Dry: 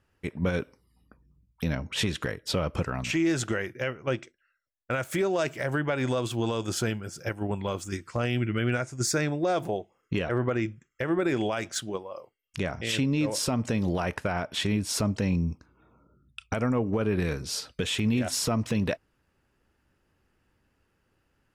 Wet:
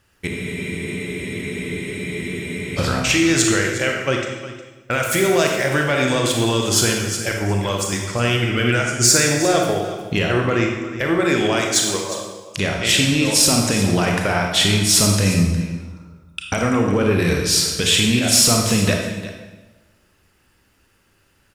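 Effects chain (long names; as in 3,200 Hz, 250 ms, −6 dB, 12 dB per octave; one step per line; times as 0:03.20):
high-shelf EQ 2,100 Hz +10.5 dB
single-tap delay 359 ms −15 dB
in parallel at −9 dB: soft clipping −21 dBFS, distortion −13 dB
on the sum: convolution reverb RT60 1.1 s, pre-delay 28 ms, DRR 1 dB
frozen spectrum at 0:00.30, 2.48 s
level +3.5 dB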